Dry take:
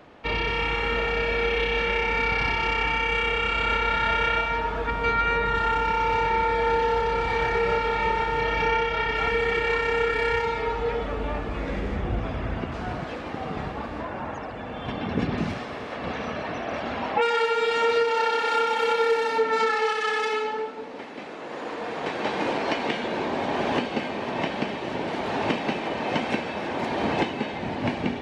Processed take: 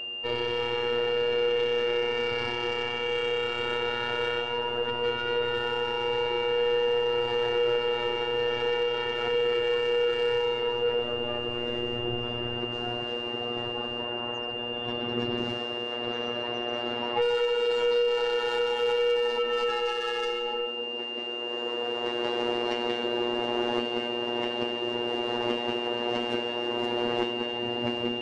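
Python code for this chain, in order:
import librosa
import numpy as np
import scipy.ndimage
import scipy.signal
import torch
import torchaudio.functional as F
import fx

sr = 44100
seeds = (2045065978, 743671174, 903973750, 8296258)

y = fx.graphic_eq_15(x, sr, hz=(160, 400, 2500), db=(-9, 11, -7))
y = 10.0 ** (-18.5 / 20.0) * np.tanh(y / 10.0 ** (-18.5 / 20.0))
y = fx.robotise(y, sr, hz=120.0)
y = y + 10.0 ** (-31.0 / 20.0) * np.sin(2.0 * np.pi * 2800.0 * np.arange(len(y)) / sr)
y = y * 10.0 ** (-2.0 / 20.0)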